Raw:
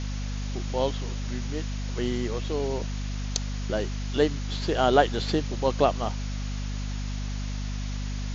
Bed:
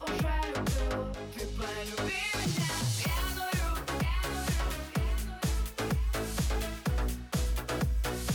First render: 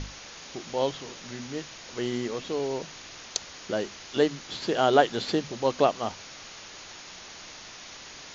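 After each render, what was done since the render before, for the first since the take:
mains-hum notches 50/100/150/200/250 Hz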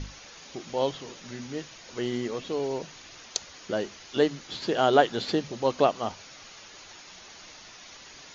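broadband denoise 6 dB, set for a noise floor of −45 dBFS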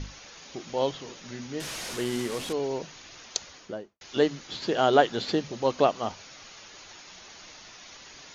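0:01.60–0:02.53: linear delta modulator 64 kbit/s, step −30 dBFS
0:03.46–0:04.01: fade out and dull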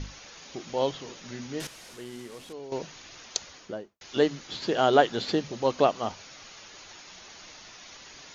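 0:01.67–0:02.72: clip gain −11.5 dB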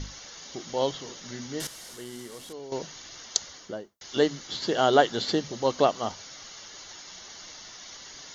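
high-shelf EQ 4,500 Hz +8 dB
notch filter 2,500 Hz, Q 6.3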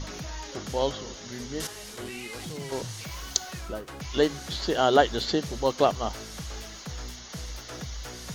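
mix in bed −8 dB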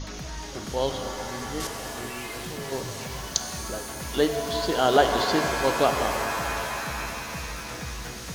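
reverb with rising layers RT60 3.9 s, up +7 semitones, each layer −2 dB, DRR 5.5 dB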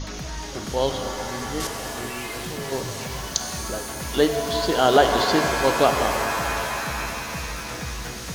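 level +3.5 dB
brickwall limiter −3 dBFS, peak gain reduction 2.5 dB

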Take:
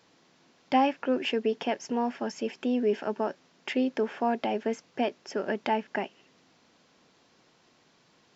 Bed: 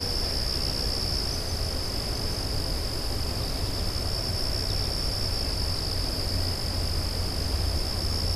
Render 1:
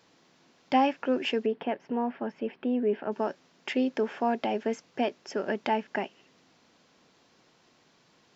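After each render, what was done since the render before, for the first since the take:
0:01.46–0:03.12: high-frequency loss of the air 420 metres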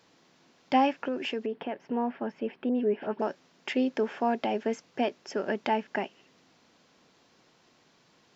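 0:01.08–0:01.88: downward compressor 2 to 1, threshold −31 dBFS
0:02.69–0:03.22: all-pass dispersion highs, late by 84 ms, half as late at 2,200 Hz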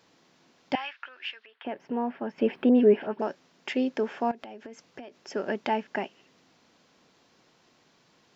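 0:00.75–0:01.65: Chebyshev band-pass filter 1,400–3,900 Hz
0:02.38–0:03.02: clip gain +8 dB
0:04.31–0:05.31: downward compressor 20 to 1, threshold −38 dBFS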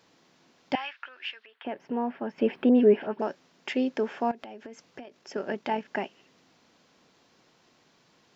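0:05.03–0:05.85: amplitude modulation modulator 45 Hz, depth 25%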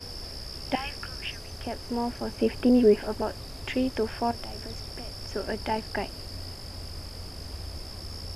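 mix in bed −11 dB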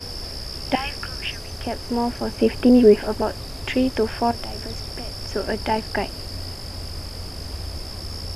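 level +6.5 dB

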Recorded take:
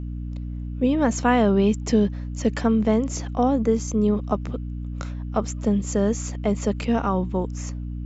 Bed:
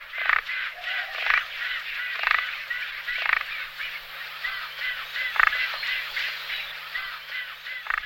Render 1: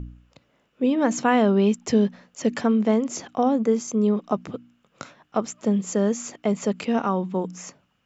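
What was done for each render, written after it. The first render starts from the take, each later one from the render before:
hum removal 60 Hz, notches 5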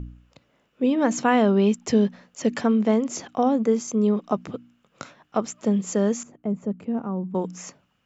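0:06.23–0:07.35: drawn EQ curve 160 Hz 0 dB, 1,300 Hz −14 dB, 5,000 Hz −27 dB, 7,300 Hz −21 dB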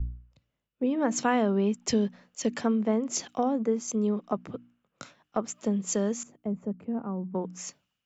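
downward compressor 2 to 1, threshold −28 dBFS, peak gain reduction 8 dB
multiband upward and downward expander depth 70%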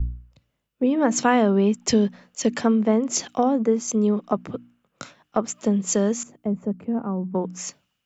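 level +6.5 dB

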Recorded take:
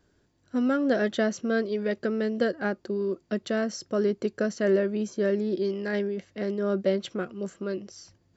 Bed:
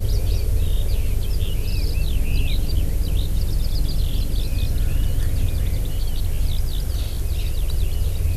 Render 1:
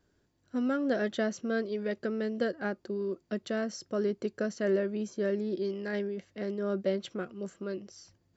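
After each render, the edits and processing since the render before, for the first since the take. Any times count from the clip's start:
level −5 dB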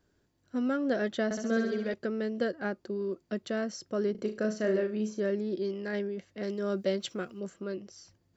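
0:01.24–0:01.94: flutter between parallel walls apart 11.3 metres, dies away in 0.96 s
0:04.11–0:05.20: flutter between parallel walls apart 6.4 metres, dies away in 0.3 s
0:06.43–0:07.40: high-shelf EQ 3,700 Hz +11.5 dB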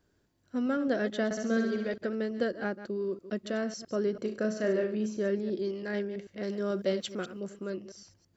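delay that plays each chunk backwards 110 ms, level −12.5 dB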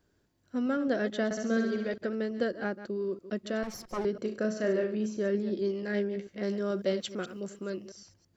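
0:03.63–0:04.05: lower of the sound and its delayed copy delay 5.5 ms
0:05.33–0:06.59: double-tracking delay 15 ms −7 dB
0:07.27–0:07.90: high-shelf EQ 3,500 Hz +6.5 dB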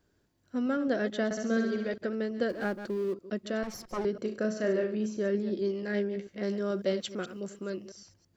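0:02.49–0:03.14: mu-law and A-law mismatch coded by mu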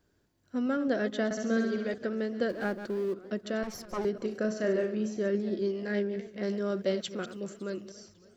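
feedback echo with a swinging delay time 276 ms, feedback 60%, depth 167 cents, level −21 dB

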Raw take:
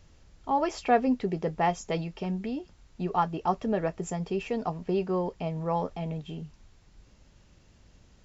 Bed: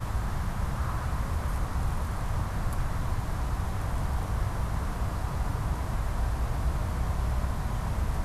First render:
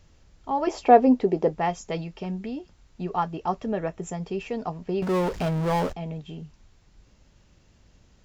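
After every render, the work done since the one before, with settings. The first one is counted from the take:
0:00.67–0:01.53: flat-topped bell 500 Hz +8.5 dB 2.3 octaves
0:03.71–0:04.13: notch filter 4,700 Hz, Q 6.2
0:05.02–0:05.93: power curve on the samples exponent 0.5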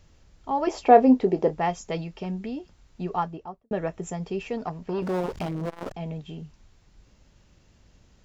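0:00.87–0:01.59: double-tracking delay 27 ms −11 dB
0:03.09–0:03.71: fade out and dull
0:04.57–0:06.00: saturating transformer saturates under 510 Hz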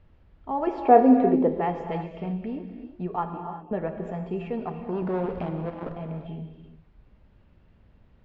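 high-frequency loss of the air 460 metres
reverb whose tail is shaped and stops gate 400 ms flat, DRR 5.5 dB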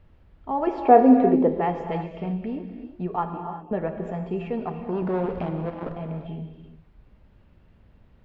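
level +2 dB
brickwall limiter −3 dBFS, peak gain reduction 1.5 dB

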